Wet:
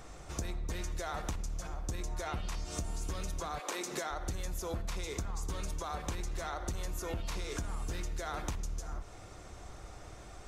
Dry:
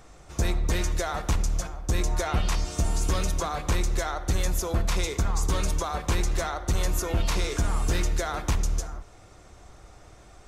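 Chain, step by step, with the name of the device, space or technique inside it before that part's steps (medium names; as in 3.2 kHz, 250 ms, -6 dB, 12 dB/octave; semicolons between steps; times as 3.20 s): 3.58–4.10 s: high-pass 470 Hz -> 130 Hz 24 dB/octave; serial compression, peaks first (compression, threshold -30 dBFS, peak gain reduction 10 dB; compression 2.5:1, threshold -37 dBFS, peak gain reduction 6.5 dB); trim +1 dB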